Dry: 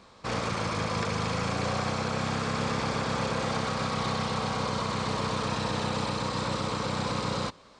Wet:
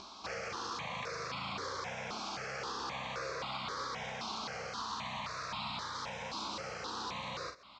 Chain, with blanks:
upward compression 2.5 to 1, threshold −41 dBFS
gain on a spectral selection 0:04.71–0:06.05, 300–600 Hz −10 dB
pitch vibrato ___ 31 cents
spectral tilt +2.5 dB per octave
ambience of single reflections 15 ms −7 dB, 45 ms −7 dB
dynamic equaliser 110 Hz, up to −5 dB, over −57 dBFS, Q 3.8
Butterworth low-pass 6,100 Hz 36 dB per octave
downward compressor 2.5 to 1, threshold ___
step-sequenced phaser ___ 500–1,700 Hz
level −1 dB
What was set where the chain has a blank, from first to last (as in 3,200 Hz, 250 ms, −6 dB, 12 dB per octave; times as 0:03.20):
3.2 Hz, −36 dBFS, 3.8 Hz